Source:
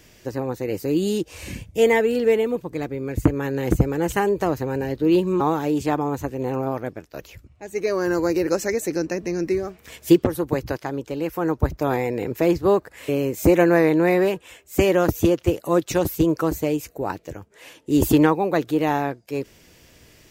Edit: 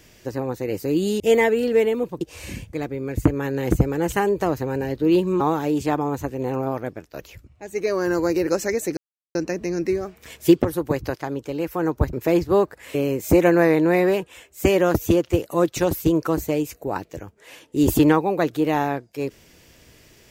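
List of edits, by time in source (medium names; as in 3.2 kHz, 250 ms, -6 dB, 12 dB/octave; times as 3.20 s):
1.20–1.72 s: move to 2.73 s
8.97 s: insert silence 0.38 s
11.75–12.27 s: delete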